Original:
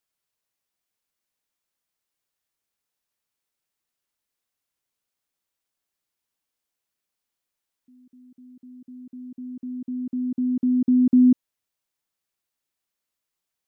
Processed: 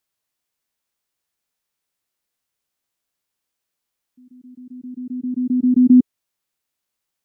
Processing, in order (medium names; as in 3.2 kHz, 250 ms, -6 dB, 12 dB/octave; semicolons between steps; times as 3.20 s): time stretch by phase-locked vocoder 0.53×; trim +5.5 dB